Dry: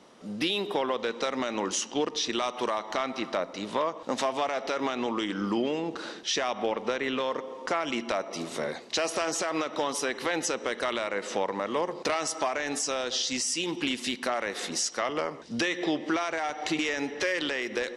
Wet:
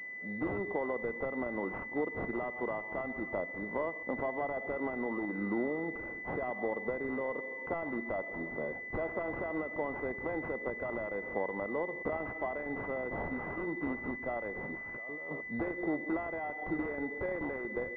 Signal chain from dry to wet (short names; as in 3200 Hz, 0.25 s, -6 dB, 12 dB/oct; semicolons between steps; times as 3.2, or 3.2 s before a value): 14.7–15.41 negative-ratio compressor -39 dBFS, ratio -1; pulse-width modulation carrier 2000 Hz; gain -5 dB